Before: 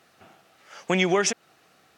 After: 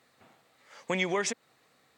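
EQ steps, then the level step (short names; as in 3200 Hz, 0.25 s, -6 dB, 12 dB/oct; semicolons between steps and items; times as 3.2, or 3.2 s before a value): ripple EQ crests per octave 1, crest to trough 6 dB; -6.5 dB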